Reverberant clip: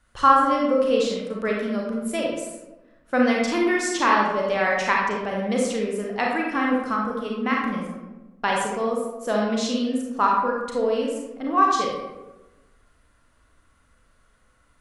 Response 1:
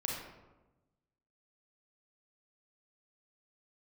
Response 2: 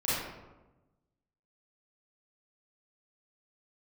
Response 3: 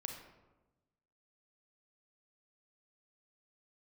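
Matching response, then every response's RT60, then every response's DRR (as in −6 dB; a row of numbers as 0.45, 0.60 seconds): 1; 1.1, 1.1, 1.1 seconds; −2.0, −11.0, 3.0 decibels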